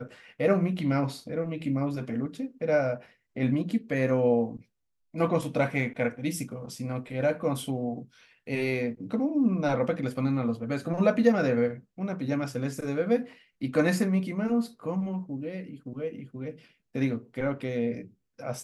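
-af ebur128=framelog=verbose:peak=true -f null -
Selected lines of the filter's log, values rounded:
Integrated loudness:
  I:         -28.7 LUFS
  Threshold: -39.2 LUFS
Loudness range:
  LRA:         5.1 LU
  Threshold: -49.1 LUFS
  LRA low:   -31.9 LUFS
  LRA high:  -26.9 LUFS
True peak:
  Peak:       -8.8 dBFS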